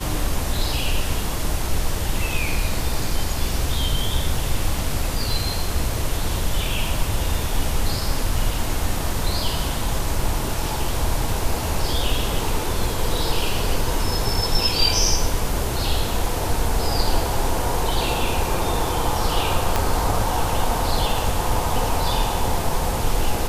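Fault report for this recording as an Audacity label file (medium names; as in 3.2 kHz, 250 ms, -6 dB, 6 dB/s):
19.760000	19.760000	pop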